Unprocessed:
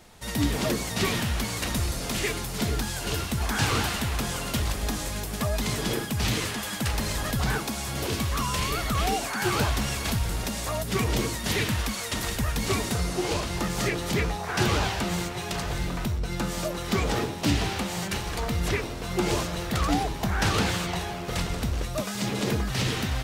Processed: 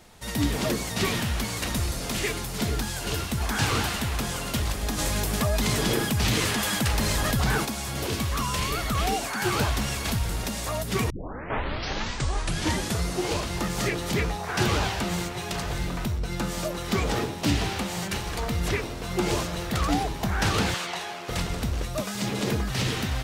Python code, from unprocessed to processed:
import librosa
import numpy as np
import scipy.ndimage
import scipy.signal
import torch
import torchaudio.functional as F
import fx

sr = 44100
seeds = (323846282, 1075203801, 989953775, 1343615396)

y = fx.env_flatten(x, sr, amount_pct=50, at=(4.97, 7.64), fade=0.02)
y = fx.weighting(y, sr, curve='A', at=(20.74, 21.29))
y = fx.edit(y, sr, fx.tape_start(start_s=11.1, length_s=1.95), tone=tone)